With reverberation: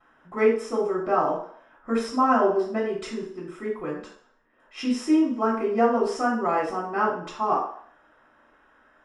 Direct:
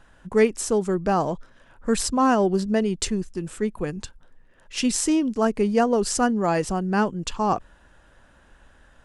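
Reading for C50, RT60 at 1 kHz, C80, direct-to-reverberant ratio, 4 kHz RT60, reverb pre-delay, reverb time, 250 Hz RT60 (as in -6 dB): 4.5 dB, 0.60 s, 8.0 dB, -15.5 dB, 0.60 s, 3 ms, 0.55 s, 0.45 s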